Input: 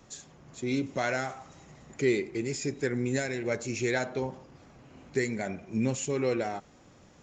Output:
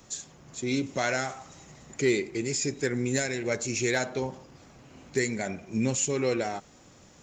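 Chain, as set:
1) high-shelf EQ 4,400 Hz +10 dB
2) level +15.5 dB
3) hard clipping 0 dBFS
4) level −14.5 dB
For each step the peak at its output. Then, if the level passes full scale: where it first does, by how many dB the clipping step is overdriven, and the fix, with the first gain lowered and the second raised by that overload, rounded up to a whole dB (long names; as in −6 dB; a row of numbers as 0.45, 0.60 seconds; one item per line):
−12.5, +3.0, 0.0, −14.5 dBFS
step 2, 3.0 dB
step 2 +12.5 dB, step 4 −11.5 dB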